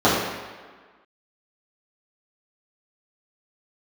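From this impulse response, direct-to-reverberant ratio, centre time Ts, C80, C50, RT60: -11.0 dB, 76 ms, 3.0 dB, 0.5 dB, 1.5 s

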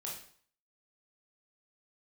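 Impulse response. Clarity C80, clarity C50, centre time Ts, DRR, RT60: 9.0 dB, 4.0 dB, 38 ms, -3.5 dB, 0.55 s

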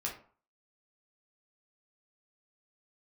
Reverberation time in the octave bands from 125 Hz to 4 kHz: 0.40 s, 0.45 s, 0.45 s, 0.50 s, 0.35 s, 0.25 s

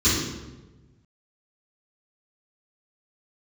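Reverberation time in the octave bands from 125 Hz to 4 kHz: 1.8 s, 1.4 s, 1.3 s, 1.0 s, 0.90 s, 0.75 s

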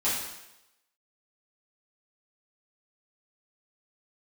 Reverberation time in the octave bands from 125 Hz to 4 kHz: 0.75 s, 0.85 s, 0.90 s, 0.90 s, 0.90 s, 0.90 s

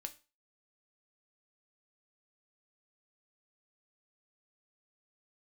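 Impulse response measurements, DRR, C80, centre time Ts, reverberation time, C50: 6.5 dB, 23.0 dB, 5 ms, 0.30 s, 17.0 dB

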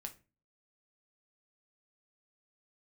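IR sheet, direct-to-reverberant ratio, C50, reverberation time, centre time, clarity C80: 4.0 dB, 16.0 dB, 0.30 s, 7 ms, 23.0 dB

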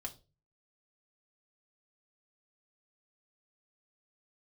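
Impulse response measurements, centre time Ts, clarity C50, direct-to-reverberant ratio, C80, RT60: 6 ms, 17.0 dB, -0.5 dB, 23.0 dB, 0.30 s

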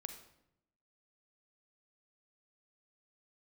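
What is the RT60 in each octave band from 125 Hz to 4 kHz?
1.0 s, 1.0 s, 0.85 s, 0.75 s, 0.65 s, 0.60 s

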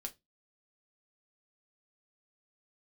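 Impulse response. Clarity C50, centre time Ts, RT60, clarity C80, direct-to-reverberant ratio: 21.5 dB, 6 ms, 0.20 s, 30.5 dB, 3.5 dB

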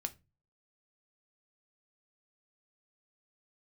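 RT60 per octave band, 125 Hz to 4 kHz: 0.55 s, 0.40 s, 0.30 s, 0.20 s, 0.25 s, 0.20 s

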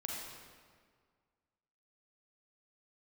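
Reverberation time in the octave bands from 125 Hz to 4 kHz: 2.0 s, 1.9 s, 1.9 s, 1.8 s, 1.5 s, 1.3 s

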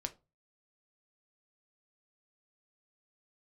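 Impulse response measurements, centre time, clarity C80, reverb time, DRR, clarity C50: 5 ms, 25.5 dB, 0.30 s, 6.5 dB, 18.5 dB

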